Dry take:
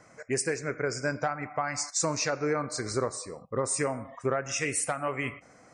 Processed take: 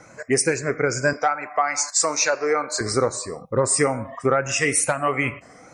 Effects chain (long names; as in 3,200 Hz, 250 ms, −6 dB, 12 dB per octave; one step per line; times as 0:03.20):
rippled gain that drifts along the octave scale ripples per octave 1.4, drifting +2.3 Hz, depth 8 dB
0:01.13–0:02.81: high-pass filter 460 Hz 12 dB per octave
level +8 dB